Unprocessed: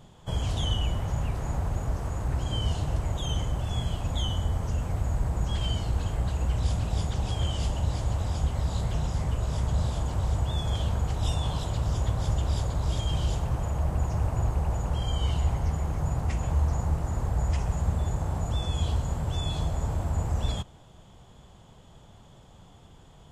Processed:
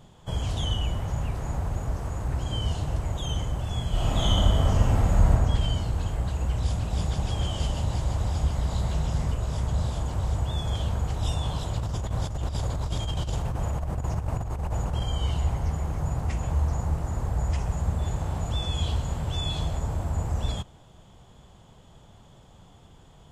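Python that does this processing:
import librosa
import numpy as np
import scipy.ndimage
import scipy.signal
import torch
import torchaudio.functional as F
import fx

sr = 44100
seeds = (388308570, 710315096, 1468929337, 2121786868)

y = fx.reverb_throw(x, sr, start_s=3.9, length_s=1.41, rt60_s=1.9, drr_db=-8.0)
y = fx.echo_single(y, sr, ms=152, db=-5.0, at=(6.92, 9.33), fade=0.02)
y = fx.over_compress(y, sr, threshold_db=-27.0, ratio=-0.5, at=(11.76, 15.04))
y = fx.peak_eq(y, sr, hz=3200.0, db=5.0, octaves=1.3, at=(18.02, 19.79))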